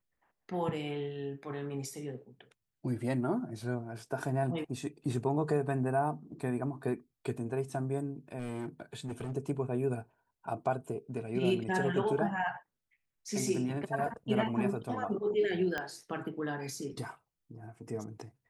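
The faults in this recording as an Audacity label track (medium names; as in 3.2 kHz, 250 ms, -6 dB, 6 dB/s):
8.390000	9.370000	clipped -33.5 dBFS
15.780000	15.780000	pop -20 dBFS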